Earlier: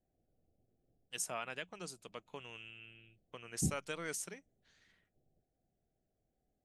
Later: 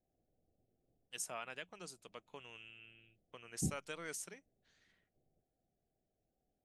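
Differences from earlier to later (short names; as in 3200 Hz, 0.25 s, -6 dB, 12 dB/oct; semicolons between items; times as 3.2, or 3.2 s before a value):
first voice -3.5 dB; master: add low shelf 240 Hz -4 dB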